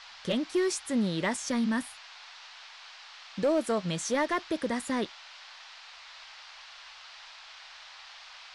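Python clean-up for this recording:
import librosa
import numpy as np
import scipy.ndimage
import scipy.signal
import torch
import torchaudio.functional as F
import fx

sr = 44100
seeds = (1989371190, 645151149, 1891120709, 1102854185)

y = fx.fix_declip(x, sr, threshold_db=-20.5)
y = fx.noise_reduce(y, sr, print_start_s=5.56, print_end_s=6.06, reduce_db=26.0)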